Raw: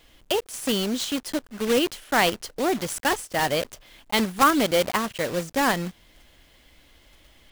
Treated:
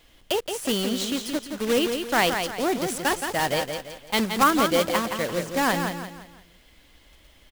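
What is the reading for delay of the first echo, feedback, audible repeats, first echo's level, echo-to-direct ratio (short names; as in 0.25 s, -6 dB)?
0.171 s, 38%, 4, -6.5 dB, -6.0 dB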